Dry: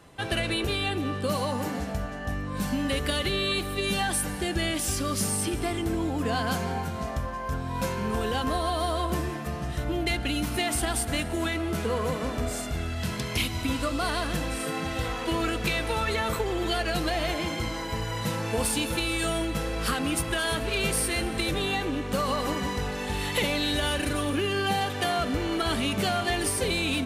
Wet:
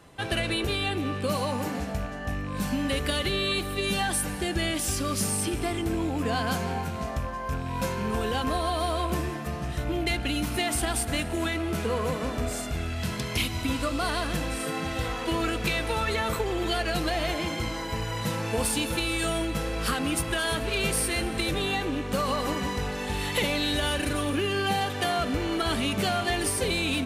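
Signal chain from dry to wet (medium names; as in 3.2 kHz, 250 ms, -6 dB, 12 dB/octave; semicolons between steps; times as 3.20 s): rattle on loud lows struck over -31 dBFS, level -35 dBFS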